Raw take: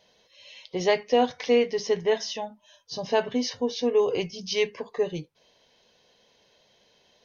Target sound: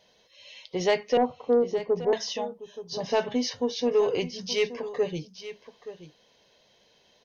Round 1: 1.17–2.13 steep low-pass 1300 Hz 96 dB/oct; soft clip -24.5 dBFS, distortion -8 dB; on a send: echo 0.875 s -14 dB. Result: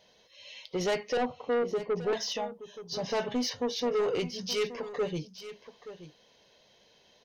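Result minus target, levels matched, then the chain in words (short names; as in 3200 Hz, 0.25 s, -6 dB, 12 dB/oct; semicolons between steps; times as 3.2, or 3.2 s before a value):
soft clip: distortion +13 dB
1.17–2.13 steep low-pass 1300 Hz 96 dB/oct; soft clip -12.5 dBFS, distortion -21 dB; on a send: echo 0.875 s -14 dB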